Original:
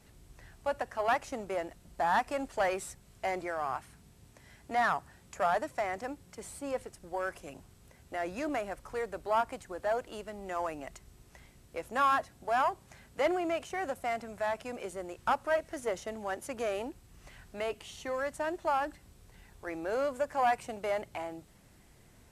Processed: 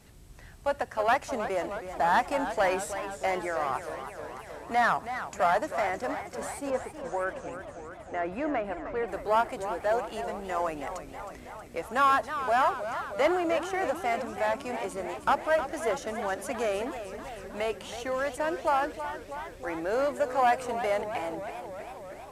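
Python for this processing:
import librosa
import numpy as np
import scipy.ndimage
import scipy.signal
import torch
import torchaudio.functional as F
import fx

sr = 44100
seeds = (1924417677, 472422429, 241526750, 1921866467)

y = fx.lowpass(x, sr, hz=2300.0, slope=12, at=(6.7, 9.08))
y = fx.echo_warbled(y, sr, ms=317, feedback_pct=72, rate_hz=2.8, cents=159, wet_db=-10.5)
y = y * 10.0 ** (4.0 / 20.0)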